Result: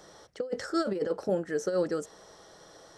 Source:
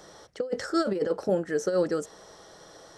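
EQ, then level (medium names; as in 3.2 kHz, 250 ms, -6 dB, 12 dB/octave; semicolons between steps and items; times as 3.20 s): flat; -3.0 dB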